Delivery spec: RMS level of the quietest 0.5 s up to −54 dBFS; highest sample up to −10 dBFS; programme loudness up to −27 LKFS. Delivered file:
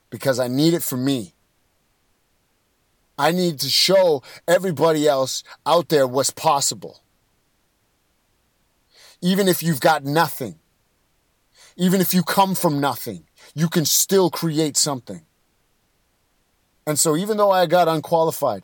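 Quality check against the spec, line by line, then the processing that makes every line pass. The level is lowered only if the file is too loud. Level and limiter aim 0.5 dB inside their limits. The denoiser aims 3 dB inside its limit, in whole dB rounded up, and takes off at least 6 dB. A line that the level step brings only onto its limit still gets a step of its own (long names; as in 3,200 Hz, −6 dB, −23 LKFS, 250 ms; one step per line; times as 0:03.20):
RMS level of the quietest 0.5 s −66 dBFS: in spec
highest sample −3.5 dBFS: out of spec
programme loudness −19.0 LKFS: out of spec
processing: level −8.5 dB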